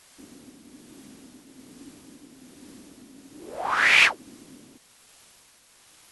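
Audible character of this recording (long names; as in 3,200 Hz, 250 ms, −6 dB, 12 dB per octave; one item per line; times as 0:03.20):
a quantiser's noise floor 10 bits, dither triangular
tremolo triangle 1.2 Hz, depth 40%
MP2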